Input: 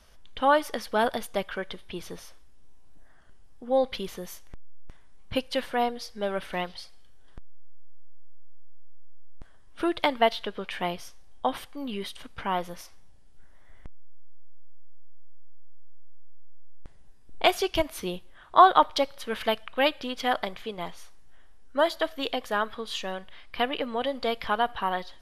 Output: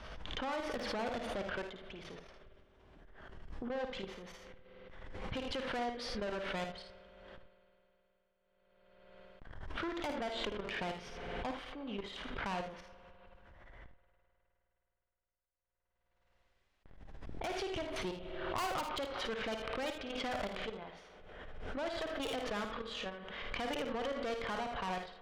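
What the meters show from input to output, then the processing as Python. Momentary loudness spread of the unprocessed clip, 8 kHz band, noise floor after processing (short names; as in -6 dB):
16 LU, -9.0 dB, -82 dBFS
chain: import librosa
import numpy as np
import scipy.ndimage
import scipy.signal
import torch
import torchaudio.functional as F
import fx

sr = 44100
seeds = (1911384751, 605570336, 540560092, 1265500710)

p1 = scipy.signal.sosfilt(scipy.signal.butter(2, 2900.0, 'lowpass', fs=sr, output='sos'), x)
p2 = fx.low_shelf(p1, sr, hz=120.0, db=-3.5)
p3 = fx.level_steps(p2, sr, step_db=16)
p4 = fx.tube_stage(p3, sr, drive_db=37.0, bias=0.7)
p5 = p4 + fx.room_early_taps(p4, sr, ms=(54, 78), db=(-7.5, -10.0), dry=0)
p6 = fx.rev_spring(p5, sr, rt60_s=3.4, pass_ms=(52,), chirp_ms=55, drr_db=15.0)
p7 = fx.pre_swell(p6, sr, db_per_s=30.0)
y = F.gain(torch.from_numpy(p7), 2.0).numpy()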